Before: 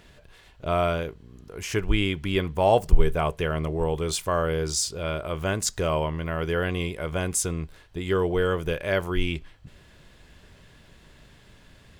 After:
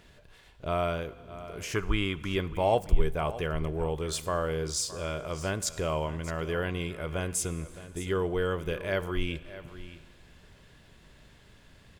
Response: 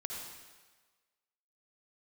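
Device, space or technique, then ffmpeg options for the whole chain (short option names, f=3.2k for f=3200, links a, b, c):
compressed reverb return: -filter_complex "[0:a]asettb=1/sr,asplit=3[a][b][c];[a]atrim=end=1.754[d];[b]atrim=start=1.75:end=2.33,asetpts=PTS-STARTPTS,afade=t=in:d=0.004:c=qsin,afade=t=out:st=0.576:d=0.004:c=qsin,equalizer=f=1.2k:w=2.5:g=12[e];[c]atrim=start=2.326[f];[d][e]acrossfade=d=0.004:c1=hsin:c2=qsin[g];[g][f]acrossfade=d=0.004:c1=qsin:c2=hsin,aecho=1:1:616:0.158,asplit=2[h][i];[1:a]atrim=start_sample=2205[j];[i][j]afir=irnorm=-1:irlink=0,acompressor=threshold=-32dB:ratio=6,volume=-7dB[k];[h][k]amix=inputs=2:normalize=0,volume=-6dB"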